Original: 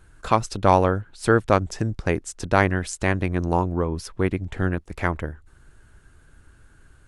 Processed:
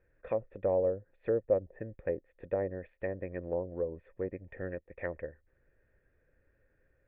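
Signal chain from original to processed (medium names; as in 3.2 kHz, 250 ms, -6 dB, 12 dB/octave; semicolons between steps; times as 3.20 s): cascade formant filter e; low-pass that closes with the level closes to 720 Hz, closed at -29.5 dBFS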